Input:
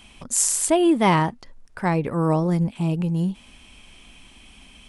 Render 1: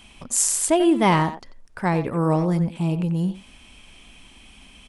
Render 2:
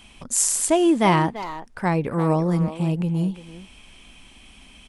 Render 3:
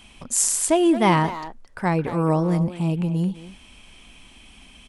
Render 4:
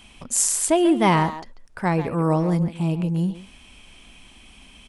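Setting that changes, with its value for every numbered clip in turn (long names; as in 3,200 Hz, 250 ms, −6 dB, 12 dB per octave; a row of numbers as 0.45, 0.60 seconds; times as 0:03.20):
far-end echo of a speakerphone, delay time: 90, 340, 220, 140 milliseconds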